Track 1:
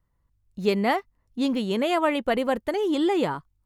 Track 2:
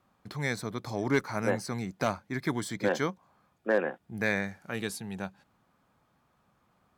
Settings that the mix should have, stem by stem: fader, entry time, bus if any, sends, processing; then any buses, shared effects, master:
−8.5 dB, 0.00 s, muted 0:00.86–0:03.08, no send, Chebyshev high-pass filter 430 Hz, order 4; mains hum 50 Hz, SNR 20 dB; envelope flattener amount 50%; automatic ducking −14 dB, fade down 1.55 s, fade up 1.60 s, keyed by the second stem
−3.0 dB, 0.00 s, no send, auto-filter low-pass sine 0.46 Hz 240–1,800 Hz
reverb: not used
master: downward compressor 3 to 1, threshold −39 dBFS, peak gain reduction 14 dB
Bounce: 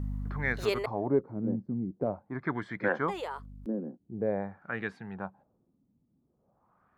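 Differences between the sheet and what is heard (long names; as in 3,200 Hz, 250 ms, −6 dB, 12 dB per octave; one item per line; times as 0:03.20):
stem 1 −8.5 dB → +1.5 dB
master: missing downward compressor 3 to 1, threshold −39 dBFS, peak gain reduction 14 dB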